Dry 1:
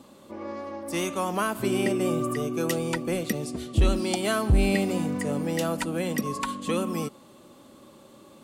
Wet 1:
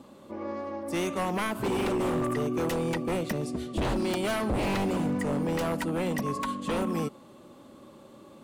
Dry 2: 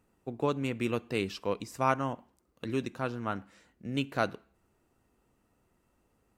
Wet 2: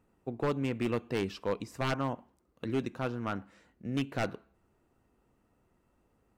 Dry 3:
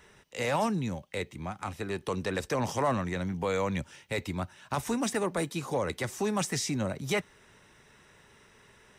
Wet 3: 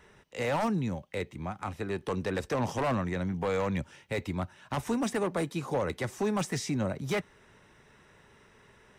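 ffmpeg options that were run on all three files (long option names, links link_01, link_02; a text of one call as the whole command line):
ffmpeg -i in.wav -af "aeval=exprs='0.0708*(abs(mod(val(0)/0.0708+3,4)-2)-1)':channel_layout=same,highshelf=frequency=2900:gain=-7.5,volume=1dB" out.wav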